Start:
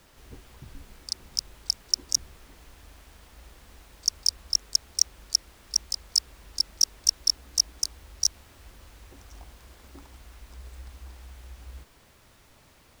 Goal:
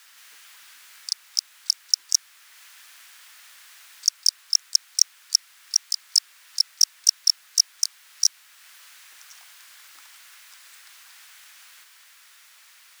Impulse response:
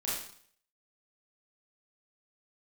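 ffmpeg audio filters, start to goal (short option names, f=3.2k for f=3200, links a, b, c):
-filter_complex "[0:a]highshelf=f=2.4k:g=9.5,asplit=2[a][b];[b]acompressor=threshold=-37dB:ratio=6,volume=-1dB[c];[a][c]amix=inputs=2:normalize=0,highpass=f=1.5k:t=q:w=1.5,volume=-5dB"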